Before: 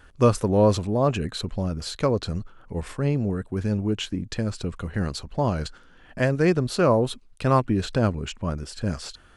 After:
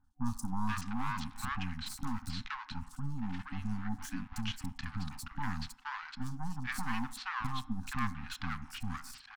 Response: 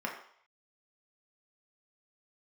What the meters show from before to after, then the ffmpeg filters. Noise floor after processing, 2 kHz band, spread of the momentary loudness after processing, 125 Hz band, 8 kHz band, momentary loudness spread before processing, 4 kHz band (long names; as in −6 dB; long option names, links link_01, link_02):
−56 dBFS, −5.5 dB, 5 LU, −15.5 dB, −9.0 dB, 11 LU, −10.0 dB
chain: -filter_complex "[0:a]highshelf=frequency=9300:gain=8,agate=range=-11dB:threshold=-43dB:ratio=16:detection=peak,adynamicsmooth=sensitivity=6:basefreq=5600,alimiter=limit=-12dB:level=0:latency=1:release=389,aeval=exprs='max(val(0),0)':channel_layout=same,acrossover=split=970|5200[link_01][link_02][link_03];[link_03]adelay=40[link_04];[link_02]adelay=470[link_05];[link_01][link_05][link_04]amix=inputs=3:normalize=0,asplit=2[link_06][link_07];[1:a]atrim=start_sample=2205[link_08];[link_07][link_08]afir=irnorm=-1:irlink=0,volume=-13.5dB[link_09];[link_06][link_09]amix=inputs=2:normalize=0,afftfilt=real='re*(1-between(b*sr/4096,280,750))':imag='im*(1-between(b*sr/4096,280,750))':win_size=4096:overlap=0.75,volume=-3.5dB"